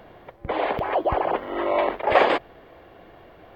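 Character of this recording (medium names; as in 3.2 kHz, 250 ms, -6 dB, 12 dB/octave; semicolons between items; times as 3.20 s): noise floor -50 dBFS; spectral tilt -2.5 dB/octave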